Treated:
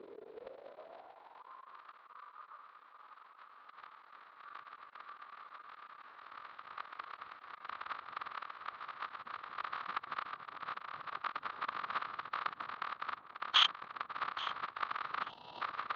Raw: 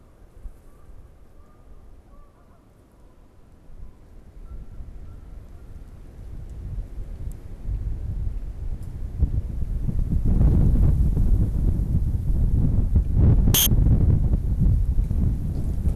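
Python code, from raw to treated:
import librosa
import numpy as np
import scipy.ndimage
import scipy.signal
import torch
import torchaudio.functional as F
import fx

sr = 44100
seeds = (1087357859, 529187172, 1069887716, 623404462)

y = fx.cycle_switch(x, sr, every=3, mode='muted')
y = scipy.signal.sosfilt(scipy.signal.ellip(4, 1.0, 80, 4100.0, 'lowpass', fs=sr, output='sos'), y)
y = fx.echo_feedback(y, sr, ms=842, feedback_pct=20, wet_db=-19.0)
y = fx.over_compress(y, sr, threshold_db=-24.0, ratio=-0.5)
y = fx.pitch_keep_formants(y, sr, semitones=-2.5)
y = fx.filter_sweep_highpass(y, sr, from_hz=390.0, to_hz=1200.0, start_s=0.08, end_s=1.81, q=5.9)
y = fx.spec_box(y, sr, start_s=15.3, length_s=0.31, low_hz=1000.0, high_hz=2600.0, gain_db=-19)
y = y * 10.0 ** (-2.0 / 20.0)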